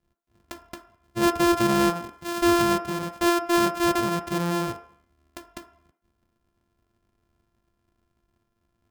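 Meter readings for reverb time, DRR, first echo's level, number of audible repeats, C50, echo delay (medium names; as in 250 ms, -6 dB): 0.60 s, 5.5 dB, no echo, no echo, 11.5 dB, no echo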